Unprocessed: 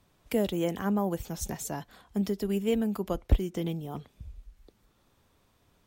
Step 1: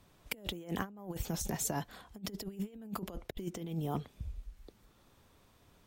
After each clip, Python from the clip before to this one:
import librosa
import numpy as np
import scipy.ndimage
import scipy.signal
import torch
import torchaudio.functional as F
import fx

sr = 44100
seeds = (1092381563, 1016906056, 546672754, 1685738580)

y = fx.over_compress(x, sr, threshold_db=-35.0, ratio=-0.5)
y = F.gain(torch.from_numpy(y), -3.5).numpy()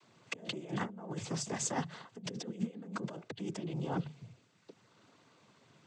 y = fx.diode_clip(x, sr, knee_db=-24.5)
y = fx.hum_notches(y, sr, base_hz=50, count=3)
y = fx.noise_vocoder(y, sr, seeds[0], bands=16)
y = F.gain(torch.from_numpy(y), 2.5).numpy()